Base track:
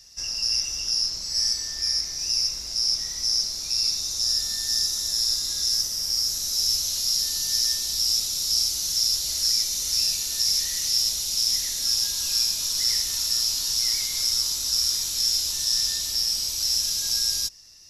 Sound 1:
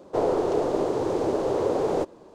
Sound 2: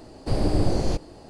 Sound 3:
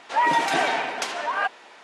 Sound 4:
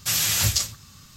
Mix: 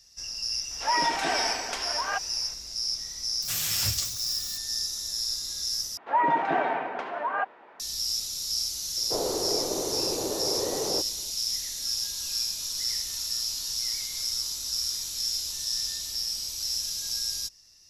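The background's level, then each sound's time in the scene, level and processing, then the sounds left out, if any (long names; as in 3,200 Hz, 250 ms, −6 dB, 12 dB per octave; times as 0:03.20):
base track −6.5 dB
0:00.71: mix in 3 −5.5 dB
0:03.42: mix in 4 −8.5 dB + spike at every zero crossing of −25 dBFS
0:05.97: overwrite with 3 −1.5 dB + low-pass filter 1,400 Hz
0:08.97: mix in 1 −7 dB + running median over 3 samples
not used: 2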